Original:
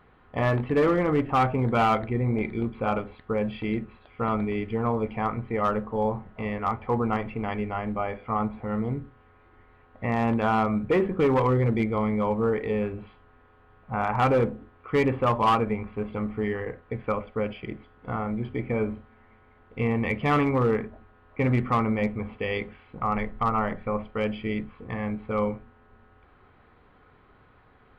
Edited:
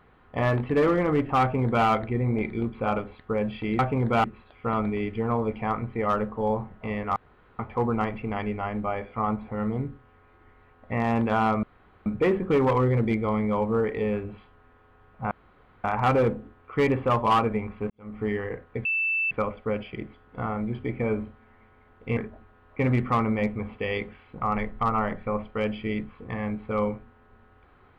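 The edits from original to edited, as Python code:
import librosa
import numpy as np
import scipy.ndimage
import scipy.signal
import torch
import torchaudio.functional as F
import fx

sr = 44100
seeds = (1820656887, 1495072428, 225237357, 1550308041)

y = fx.edit(x, sr, fx.duplicate(start_s=1.41, length_s=0.45, to_s=3.79),
    fx.insert_room_tone(at_s=6.71, length_s=0.43),
    fx.insert_room_tone(at_s=10.75, length_s=0.43),
    fx.insert_room_tone(at_s=14.0, length_s=0.53),
    fx.fade_in_span(start_s=16.06, length_s=0.32, curve='qua'),
    fx.insert_tone(at_s=17.01, length_s=0.46, hz=2650.0, db=-22.5),
    fx.cut(start_s=19.87, length_s=0.9), tone=tone)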